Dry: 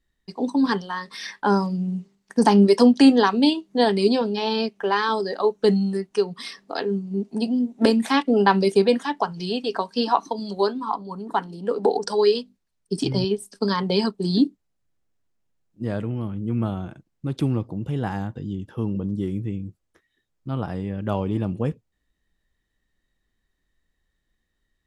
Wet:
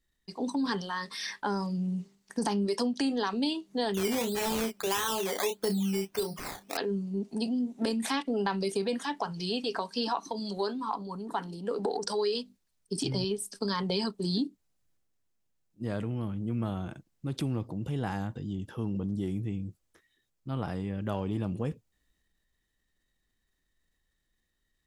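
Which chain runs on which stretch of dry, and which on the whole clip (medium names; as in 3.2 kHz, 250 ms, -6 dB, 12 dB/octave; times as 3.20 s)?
3.94–6.77 s: decimation with a swept rate 13×, swing 60% 1.6 Hz + doubling 31 ms -9 dB
whole clip: treble shelf 3.7 kHz +7 dB; compression 6:1, threshold -21 dBFS; transient shaper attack -2 dB, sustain +4 dB; trim -5 dB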